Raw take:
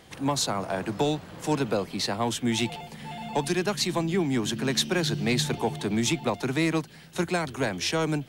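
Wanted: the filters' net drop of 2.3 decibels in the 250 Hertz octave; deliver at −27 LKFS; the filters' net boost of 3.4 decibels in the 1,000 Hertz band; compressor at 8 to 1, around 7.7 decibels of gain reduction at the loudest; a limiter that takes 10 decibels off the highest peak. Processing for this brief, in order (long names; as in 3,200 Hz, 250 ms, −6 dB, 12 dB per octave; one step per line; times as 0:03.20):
parametric band 250 Hz −3.5 dB
parametric band 1,000 Hz +4.5 dB
downward compressor 8 to 1, threshold −28 dBFS
level +9.5 dB
brickwall limiter −17.5 dBFS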